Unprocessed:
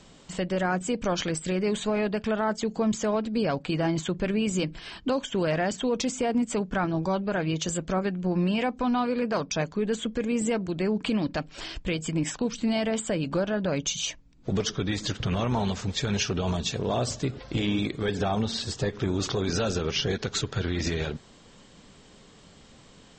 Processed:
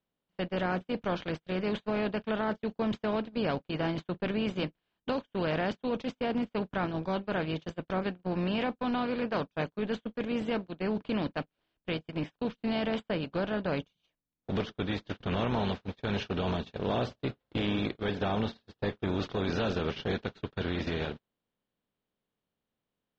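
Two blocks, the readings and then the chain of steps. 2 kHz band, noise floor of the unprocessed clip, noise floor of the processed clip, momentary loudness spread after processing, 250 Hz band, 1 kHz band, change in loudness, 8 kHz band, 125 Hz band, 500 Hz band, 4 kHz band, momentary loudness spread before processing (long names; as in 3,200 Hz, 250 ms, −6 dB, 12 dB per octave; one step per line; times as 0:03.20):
−3.5 dB, −53 dBFS, below −85 dBFS, 6 LU, −5.0 dB, −3.5 dB, −5.0 dB, below −25 dB, −6.0 dB, −4.5 dB, −7.5 dB, 4 LU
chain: compressor on every frequency bin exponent 0.6
low-pass filter 4,000 Hz 24 dB per octave
noise gate −23 dBFS, range −43 dB
level −7.5 dB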